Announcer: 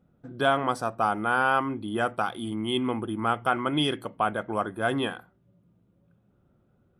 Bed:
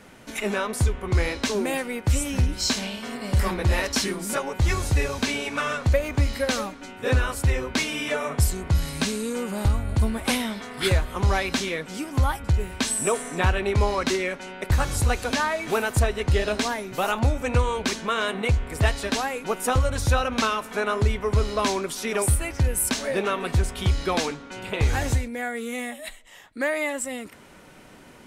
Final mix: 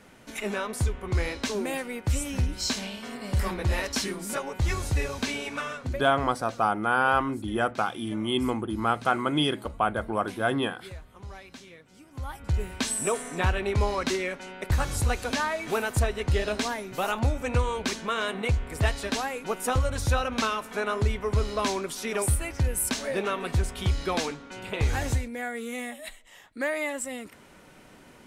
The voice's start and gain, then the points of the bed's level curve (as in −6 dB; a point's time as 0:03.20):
5.60 s, +0.5 dB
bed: 0:05.52 −4.5 dB
0:06.42 −21 dB
0:12.03 −21 dB
0:12.57 −3.5 dB